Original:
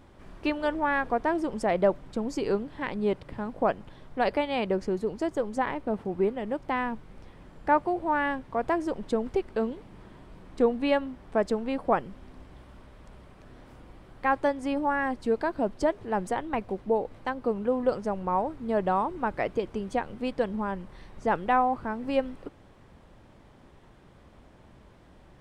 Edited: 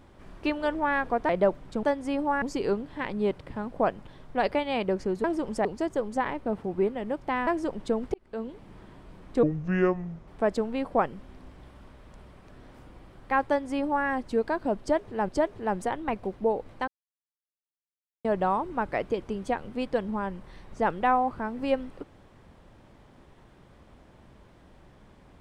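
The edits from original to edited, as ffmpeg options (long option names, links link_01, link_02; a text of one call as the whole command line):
ffmpeg -i in.wav -filter_complex "[0:a]asplit=13[link_01][link_02][link_03][link_04][link_05][link_06][link_07][link_08][link_09][link_10][link_11][link_12][link_13];[link_01]atrim=end=1.292[link_14];[link_02]atrim=start=1.698:end=2.242[link_15];[link_03]atrim=start=14.408:end=15.002[link_16];[link_04]atrim=start=2.238:end=5.062[link_17];[link_05]atrim=start=1.288:end=1.702[link_18];[link_06]atrim=start=5.058:end=6.882[link_19];[link_07]atrim=start=8.698:end=9.37,asetpts=PTS-STARTPTS,afade=type=out:start_time=0.668:duration=0.004:curve=hsin[link_20];[link_08]atrim=start=9.37:end=10.664,asetpts=PTS-STARTPTS,afade=type=in:duration=0.52[link_21];[link_09]atrim=start=10.66:end=11.21,asetpts=PTS-STARTPTS,asetrate=28665,aresample=44100,atrim=end_sample=37315,asetpts=PTS-STARTPTS[link_22];[link_10]atrim=start=11.206:end=16.222[link_23];[link_11]atrim=start=15.738:end=17.33,asetpts=PTS-STARTPTS,afade=type=out:start_time=1.588:duration=0.004:curve=hsin[link_24];[link_12]atrim=start=17.33:end=18.7,asetpts=PTS-STARTPTS,volume=0[link_25];[link_13]atrim=start=18.7,asetpts=PTS-STARTPTS,afade=type=in:duration=0.004:curve=hsin[link_26];[link_14][link_15]acrossfade=duration=0.004:curve1=hsin:curve2=hsin[link_27];[link_27][link_16]acrossfade=duration=0.004:curve1=hsin:curve2=hsin[link_28];[link_28][link_17]acrossfade=duration=0.004:curve1=hsin:curve2=hsin[link_29];[link_29][link_18]acrossfade=duration=0.004:curve1=hsin:curve2=hsin[link_30];[link_30][link_19]acrossfade=duration=0.004:curve1=hsin:curve2=hsin[link_31];[link_20][link_21]concat=n=2:v=0:a=1[link_32];[link_31][link_32]acrossfade=duration=0.004:curve1=hsin:curve2=hsin[link_33];[link_33][link_22]acrossfade=duration=0.004:curve1=hsin:curve2=hsin[link_34];[link_34][link_23]acrossfade=duration=0.004:curve1=hsin:curve2=hsin[link_35];[link_24][link_25][link_26]concat=n=3:v=0:a=1[link_36];[link_35][link_36]acrossfade=duration=0.004:curve1=hsin:curve2=hsin" out.wav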